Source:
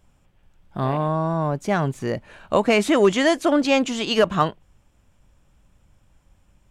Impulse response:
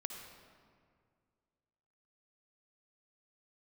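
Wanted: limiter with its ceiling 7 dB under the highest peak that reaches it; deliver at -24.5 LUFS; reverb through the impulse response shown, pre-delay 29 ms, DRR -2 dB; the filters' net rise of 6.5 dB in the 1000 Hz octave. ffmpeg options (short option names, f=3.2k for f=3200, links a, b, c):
-filter_complex "[0:a]equalizer=f=1k:t=o:g=8,alimiter=limit=-7dB:level=0:latency=1,asplit=2[a][b];[1:a]atrim=start_sample=2205,adelay=29[c];[b][c]afir=irnorm=-1:irlink=0,volume=3.5dB[d];[a][d]amix=inputs=2:normalize=0,volume=-8.5dB"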